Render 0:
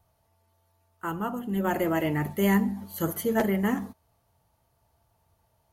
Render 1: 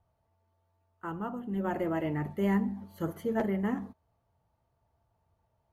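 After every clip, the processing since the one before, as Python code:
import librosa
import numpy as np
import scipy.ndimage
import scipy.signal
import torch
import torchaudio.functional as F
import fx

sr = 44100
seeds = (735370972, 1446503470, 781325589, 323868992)

y = fx.lowpass(x, sr, hz=1500.0, slope=6)
y = F.gain(torch.from_numpy(y), -4.5).numpy()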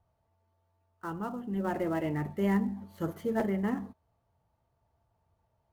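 y = fx.dead_time(x, sr, dead_ms=0.055)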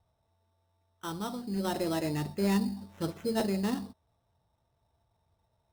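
y = fx.sample_hold(x, sr, seeds[0], rate_hz=4600.0, jitter_pct=0)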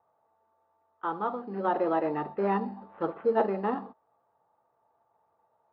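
y = fx.cabinet(x, sr, low_hz=310.0, low_slope=12, high_hz=2200.0, hz=(480.0, 820.0, 1200.0, 2200.0), db=(6, 8, 8, -5))
y = F.gain(torch.from_numpy(y), 3.0).numpy()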